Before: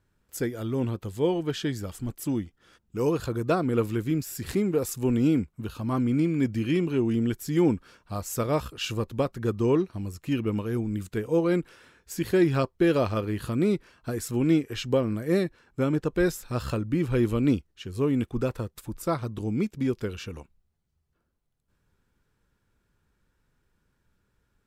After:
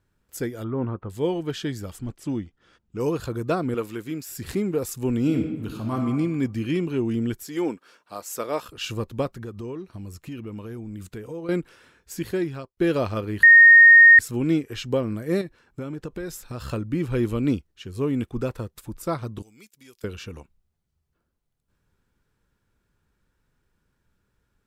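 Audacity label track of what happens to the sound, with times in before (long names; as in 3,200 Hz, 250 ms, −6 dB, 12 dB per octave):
0.640000	1.100000	low-pass with resonance 1,300 Hz, resonance Q 1.9
1.990000	3.000000	high-frequency loss of the air 66 metres
3.740000	4.290000	high-pass filter 390 Hz 6 dB per octave
5.210000	5.970000	thrown reverb, RT60 1.2 s, DRR 3.5 dB
7.440000	8.690000	high-pass filter 360 Hz
9.310000	11.490000	downward compressor 4 to 1, threshold −33 dBFS
12.140000	12.770000	fade out
13.430000	14.190000	beep over 1,850 Hz −7 dBFS
15.410000	16.730000	downward compressor 12 to 1, threshold −28 dBFS
19.420000	20.040000	first-order pre-emphasis coefficient 0.97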